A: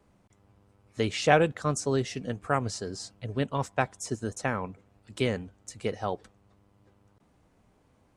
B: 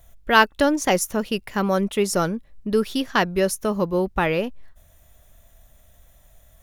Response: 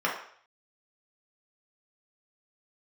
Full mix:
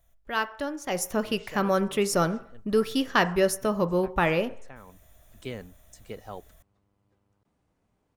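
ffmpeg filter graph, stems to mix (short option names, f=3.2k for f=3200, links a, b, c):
-filter_complex "[0:a]adelay=250,volume=-9dB[a];[1:a]volume=-3.5dB,afade=t=in:st=0.87:d=0.24:silence=0.281838,asplit=3[b][c][d];[c]volume=-20dB[e];[d]apad=whole_len=371226[f];[a][f]sidechaincompress=threshold=-35dB:ratio=8:attack=24:release=1000[g];[2:a]atrim=start_sample=2205[h];[e][h]afir=irnorm=-1:irlink=0[i];[g][b][i]amix=inputs=3:normalize=0"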